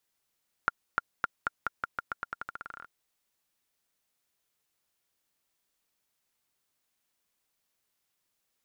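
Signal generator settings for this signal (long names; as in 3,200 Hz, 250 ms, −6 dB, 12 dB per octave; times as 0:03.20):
bouncing ball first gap 0.30 s, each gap 0.87, 1,400 Hz, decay 23 ms −11 dBFS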